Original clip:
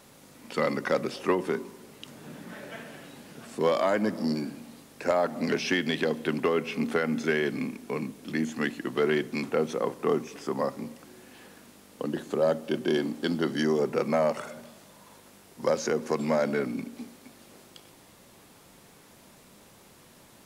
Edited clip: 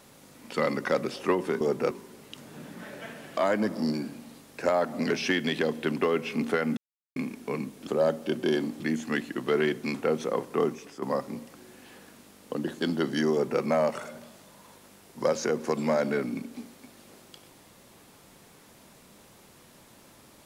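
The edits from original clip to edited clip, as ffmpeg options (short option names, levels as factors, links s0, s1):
-filter_complex "[0:a]asplit=10[s0][s1][s2][s3][s4][s5][s6][s7][s8][s9];[s0]atrim=end=1.612[s10];[s1]atrim=start=13.738:end=14.042[s11];[s2]atrim=start=1.608:end=3.072[s12];[s3]atrim=start=3.788:end=7.19,asetpts=PTS-STARTPTS,afade=t=out:st=3.398:d=0.004:c=hsin[s13];[s4]atrim=start=7.19:end=7.58,asetpts=PTS-STARTPTS,volume=0[s14];[s5]atrim=start=7.58:end=8.292,asetpts=PTS-STARTPTS,afade=t=in:d=0.004:c=hsin[s15];[s6]atrim=start=12.288:end=13.222[s16];[s7]atrim=start=8.288:end=10.51,asetpts=PTS-STARTPTS,afade=t=out:st=1.762:d=0.46:c=qsin:silence=0.334965[s17];[s8]atrim=start=10.51:end=12.292,asetpts=PTS-STARTPTS,afade=t=in:d=0.004:c=hsin:silence=0.334965[s18];[s9]atrim=start=13.218[s19];[s10][s11]acrossfade=d=0.004:c1=hsin:c2=hsin[s20];[s20][s12]acrossfade=d=0.004:c1=hsin:c2=hsin[s21];[s13][s14][s15]concat=n=3:v=0:a=1[s22];[s21][s22]acrossfade=d=0.004:c1=hsin:c2=hsin[s23];[s23][s16]acrossfade=d=0.004:c1=hsin:c2=hsin[s24];[s17][s18]concat=n=2:v=0:a=1[s25];[s24][s25]acrossfade=d=0.004:c1=hsin:c2=hsin[s26];[s26][s19]acrossfade=d=0.004:c1=hsin:c2=hsin"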